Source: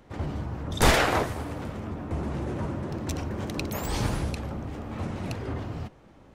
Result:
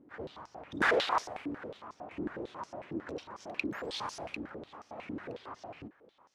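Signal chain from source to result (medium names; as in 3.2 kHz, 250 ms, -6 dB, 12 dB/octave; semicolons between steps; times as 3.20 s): vibrato 0.49 Hz 11 cents; step-sequenced band-pass 11 Hz 300–5600 Hz; trim +4 dB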